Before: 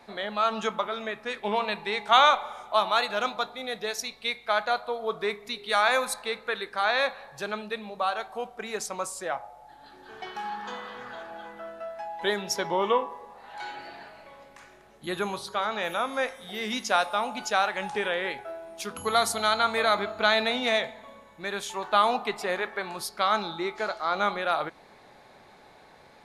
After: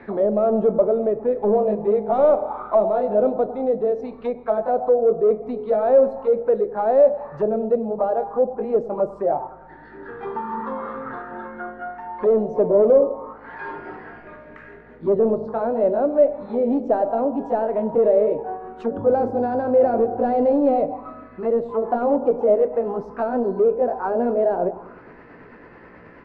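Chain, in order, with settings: pitch bend over the whole clip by +3 st starting unshifted; resonant low shelf 560 Hz +10.5 dB, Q 1.5; saturation -21 dBFS, distortion -11 dB; feedback echo behind a low-pass 100 ms, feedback 55%, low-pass 940 Hz, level -14.5 dB; touch-sensitive low-pass 620–1900 Hz down, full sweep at -26 dBFS; trim +3.5 dB

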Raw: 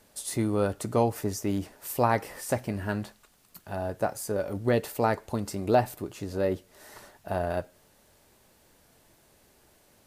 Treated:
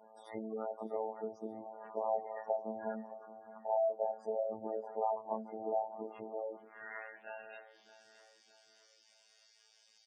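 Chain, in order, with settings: short-time spectra conjugated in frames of 56 ms; treble shelf 5 kHz -10.5 dB; comb 4.8 ms, depth 71%; peak limiter -22 dBFS, peak gain reduction 10 dB; compression 16:1, threshold -38 dBFS, peak gain reduction 13 dB; band-pass sweep 760 Hz -> 4.9 kHz, 6.13–8.05 s; robot voice 110 Hz; spectral gate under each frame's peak -15 dB strong; Butterworth band-stop 4.1 kHz, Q 6.5; on a send: feedback delay 617 ms, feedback 49%, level -16 dB; on the sum: trim +15 dB

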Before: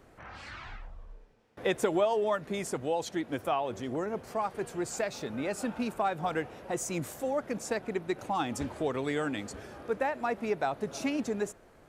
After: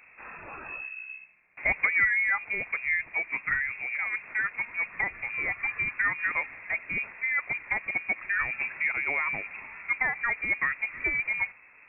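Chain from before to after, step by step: 3.31–3.99 s: comb of notches 160 Hz; frequency inversion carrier 2.6 kHz; trim +2.5 dB

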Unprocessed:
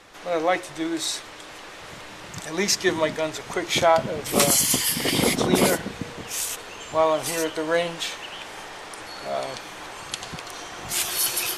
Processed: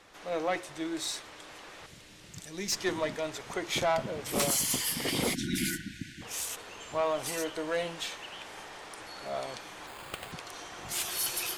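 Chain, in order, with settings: valve stage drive 15 dB, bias 0.3; 1.86–2.72 s: peaking EQ 950 Hz -13 dB 2.3 oct; 5.35–6.22 s: spectral selection erased 360–1400 Hz; 9.87–10.32 s: sample-rate reducer 5.8 kHz, jitter 0%; trim -6.5 dB

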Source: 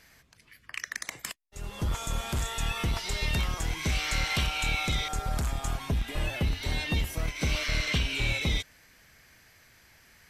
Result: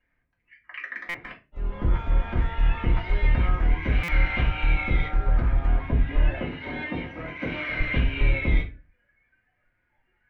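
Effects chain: low-pass 2.3 kHz 24 dB/octave; spectral noise reduction 18 dB; 6.36–7.80 s: high-pass 190 Hz 12 dB/octave; reverberation RT60 0.30 s, pre-delay 3 ms, DRR -4.5 dB; buffer glitch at 1.09/4.03 s, samples 256, times 8; trim -2 dB

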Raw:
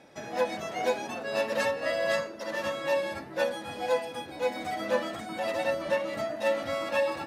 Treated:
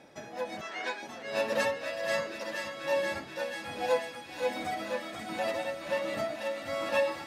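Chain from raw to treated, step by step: tremolo 1.3 Hz, depth 62%; 0.61–1.03 s: cabinet simulation 420–7600 Hz, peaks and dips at 500 Hz -9 dB, 710 Hz -9 dB, 1.7 kHz +6 dB, 6.4 kHz -7 dB; feedback echo behind a high-pass 482 ms, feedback 73%, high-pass 1.6 kHz, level -6 dB

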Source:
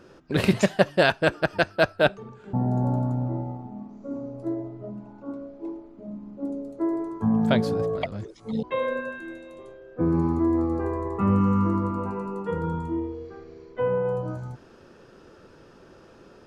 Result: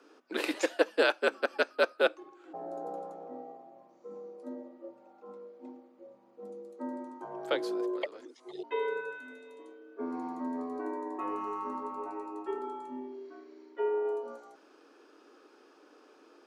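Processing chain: steep high-pass 370 Hz 48 dB/octave; frequency shift -77 Hz; trim -5.5 dB

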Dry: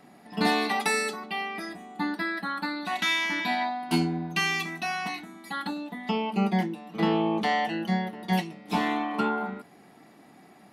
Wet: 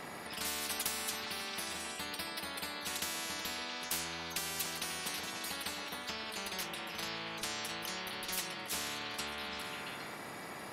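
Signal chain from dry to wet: repeats whose band climbs or falls 135 ms, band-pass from 440 Hz, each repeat 0.7 oct, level -4 dB; spectrum-flattening compressor 10:1; trim -8 dB

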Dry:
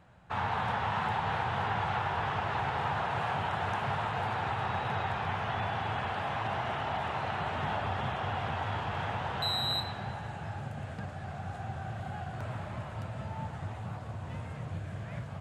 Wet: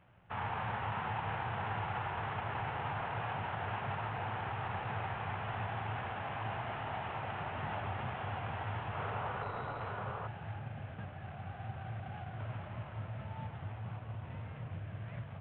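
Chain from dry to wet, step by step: CVSD coder 16 kbps; painted sound noise, 8.94–10.28 s, 380–1500 Hz -37 dBFS; peaking EQ 110 Hz +6.5 dB 0.23 oct; trim -6 dB

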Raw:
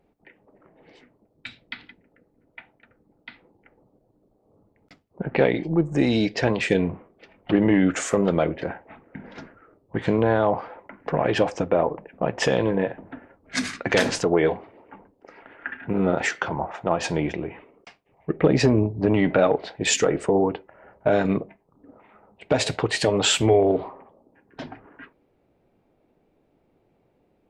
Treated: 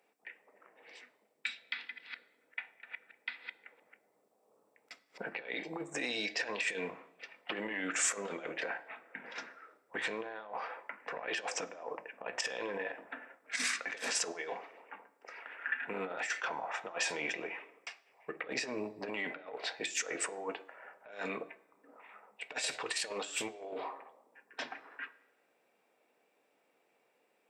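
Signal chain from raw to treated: 1.73–5.49 s: chunks repeated in reverse 207 ms, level -6 dB; high-pass 580 Hz 12 dB/octave; compressor with a negative ratio -30 dBFS, ratio -0.5; peak limiter -22 dBFS, peak gain reduction 10.5 dB; reverberation RT60 0.95 s, pre-delay 3 ms, DRR 12.5 dB

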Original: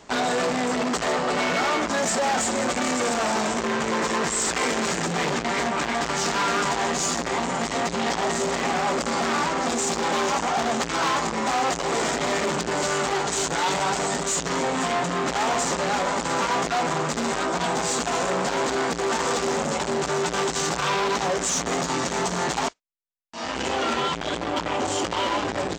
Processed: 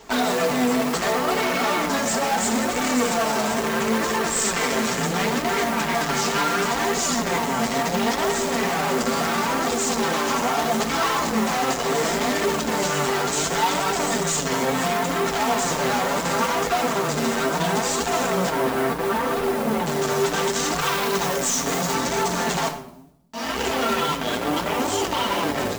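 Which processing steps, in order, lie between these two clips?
18.50–19.86 s: distance through air 310 m; simulated room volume 2000 m³, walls furnished, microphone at 1.6 m; modulation noise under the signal 16 dB; 20.81–21.95 s: treble shelf 9 kHz +6.5 dB; peak limiter -15.5 dBFS, peak gain reduction 4.5 dB; flange 0.72 Hz, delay 2.1 ms, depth 6.4 ms, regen +43%; trim +5.5 dB

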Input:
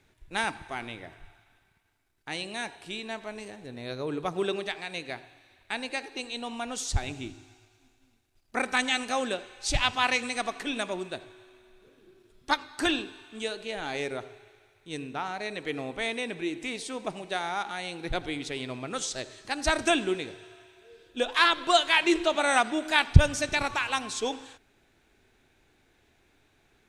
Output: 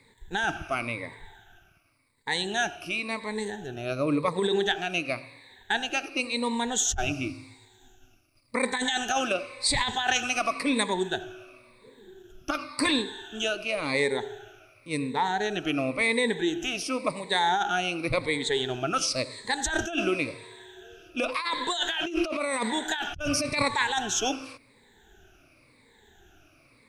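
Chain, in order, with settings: drifting ripple filter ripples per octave 0.97, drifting -0.93 Hz, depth 18 dB; compressor with a negative ratio -26 dBFS, ratio -1

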